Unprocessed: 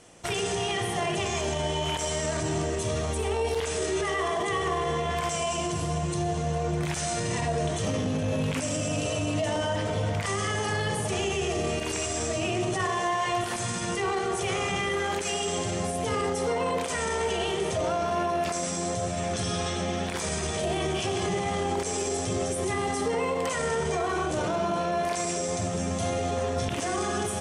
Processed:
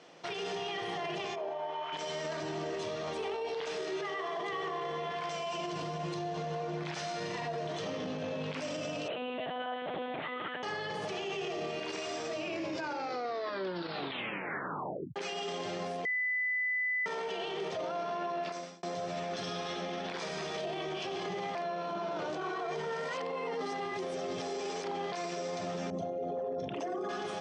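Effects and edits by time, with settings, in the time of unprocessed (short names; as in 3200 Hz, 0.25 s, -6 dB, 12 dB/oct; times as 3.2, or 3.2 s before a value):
1.34–1.92 band-pass 530 Hz -> 1300 Hz, Q 1.7
9.08–10.63 monotone LPC vocoder at 8 kHz 250 Hz
12.36 tape stop 2.80 s
16.05–17.06 bleep 2000 Hz -20.5 dBFS
18.19–18.83 fade out
21.55–25.12 reverse
25.9–27.09 formant sharpening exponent 2
whole clip: Chebyshev band-pass 180–4800 Hz, order 3; bell 220 Hz -11 dB 0.36 oct; limiter -29 dBFS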